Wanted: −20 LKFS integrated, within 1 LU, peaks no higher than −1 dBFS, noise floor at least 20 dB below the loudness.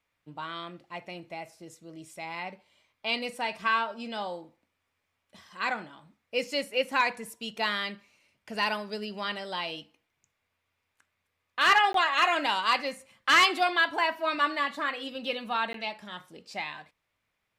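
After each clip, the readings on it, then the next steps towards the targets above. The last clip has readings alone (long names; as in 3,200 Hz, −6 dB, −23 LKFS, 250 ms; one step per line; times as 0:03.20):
number of dropouts 2; longest dropout 13 ms; integrated loudness −28.0 LKFS; sample peak −12.5 dBFS; target loudness −20.0 LKFS
→ repair the gap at 0:11.93/0:15.73, 13 ms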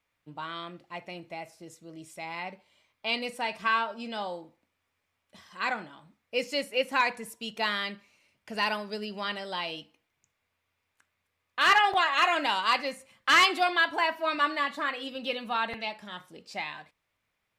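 number of dropouts 0; integrated loudness −28.0 LKFS; sample peak −12.5 dBFS; target loudness −20.0 LKFS
→ level +8 dB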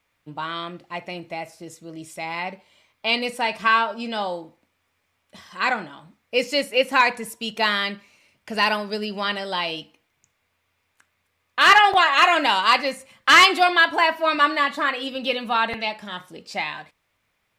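integrated loudness −20.0 LKFS; sample peak −4.5 dBFS; background noise floor −72 dBFS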